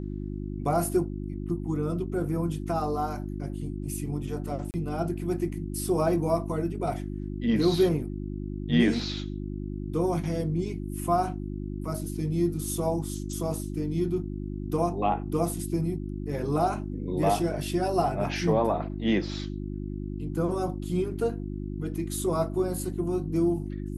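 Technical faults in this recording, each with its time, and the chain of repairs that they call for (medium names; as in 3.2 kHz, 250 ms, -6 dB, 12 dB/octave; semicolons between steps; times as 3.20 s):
hum 50 Hz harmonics 7 -34 dBFS
4.71–4.74 s: dropout 29 ms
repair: de-hum 50 Hz, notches 7; interpolate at 4.71 s, 29 ms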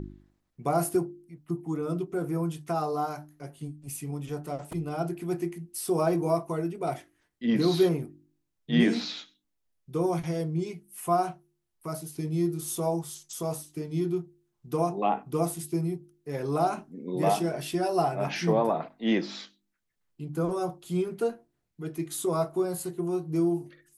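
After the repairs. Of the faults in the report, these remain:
nothing left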